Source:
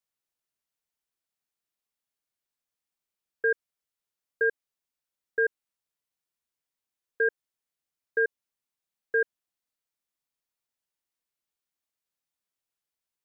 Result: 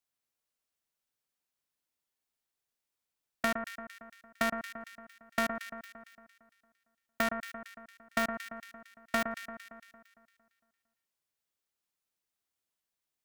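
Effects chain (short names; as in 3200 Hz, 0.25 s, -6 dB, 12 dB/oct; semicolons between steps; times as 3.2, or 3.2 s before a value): cycle switcher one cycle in 2, inverted; compressor, threshold -27 dBFS, peak gain reduction 7 dB; echo with dull and thin repeats by turns 0.114 s, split 1700 Hz, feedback 67%, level -6.5 dB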